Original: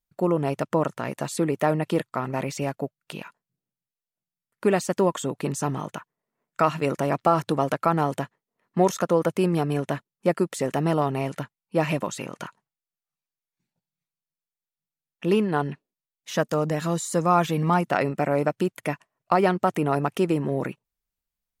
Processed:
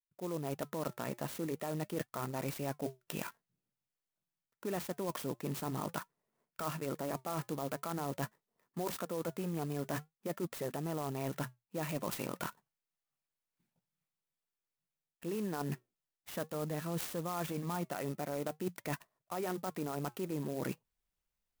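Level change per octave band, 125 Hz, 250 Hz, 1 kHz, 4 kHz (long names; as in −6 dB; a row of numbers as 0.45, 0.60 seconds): −13.0, −13.5, −16.5, −10.0 decibels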